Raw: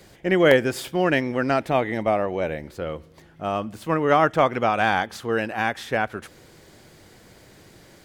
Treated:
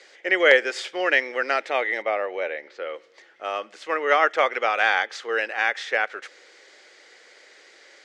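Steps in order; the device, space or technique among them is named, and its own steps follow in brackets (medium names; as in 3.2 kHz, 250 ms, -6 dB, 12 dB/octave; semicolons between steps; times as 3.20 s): 2.02–2.94 s: distance through air 120 m; phone speaker on a table (cabinet simulation 480–6800 Hz, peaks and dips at 680 Hz -7 dB, 980 Hz -8 dB, 2 kHz +6 dB); trim +2.5 dB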